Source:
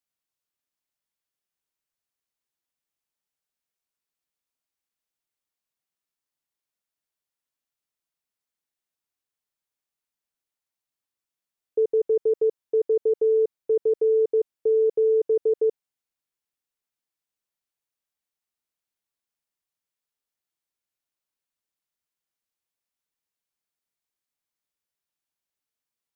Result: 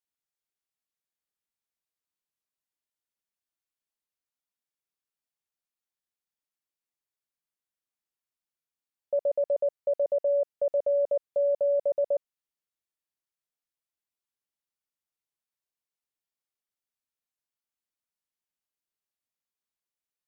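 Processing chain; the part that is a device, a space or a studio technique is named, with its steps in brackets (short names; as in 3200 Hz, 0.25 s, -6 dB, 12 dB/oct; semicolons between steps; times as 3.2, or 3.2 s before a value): nightcore (varispeed +29%); gain -4.5 dB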